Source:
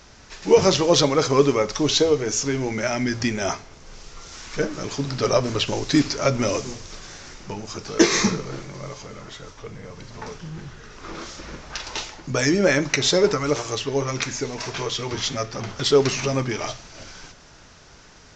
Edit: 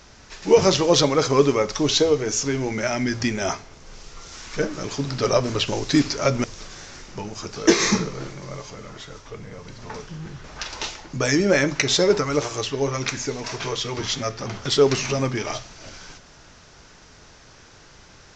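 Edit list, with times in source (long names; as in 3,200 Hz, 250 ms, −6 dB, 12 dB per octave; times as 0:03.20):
0:06.44–0:06.76: remove
0:10.76–0:11.58: remove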